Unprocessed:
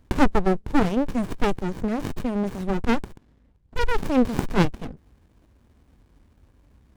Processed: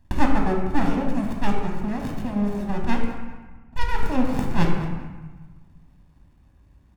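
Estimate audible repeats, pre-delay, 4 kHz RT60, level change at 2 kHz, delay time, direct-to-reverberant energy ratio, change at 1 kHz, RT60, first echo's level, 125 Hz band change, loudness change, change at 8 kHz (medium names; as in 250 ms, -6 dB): 1, 18 ms, 0.90 s, -1.0 dB, 194 ms, 0.5 dB, 0.0 dB, 1.3 s, -14.5 dB, +1.0 dB, -1.5 dB, -3.5 dB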